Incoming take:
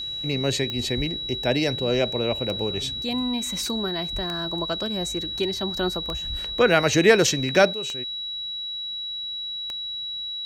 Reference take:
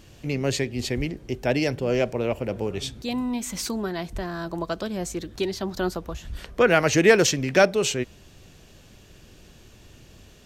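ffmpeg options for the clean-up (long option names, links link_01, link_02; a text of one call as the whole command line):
ffmpeg -i in.wav -af "adeclick=threshold=4,bandreject=frequency=3900:width=30,asetnsamples=nb_out_samples=441:pad=0,asendcmd='7.73 volume volume 11.5dB',volume=0dB" out.wav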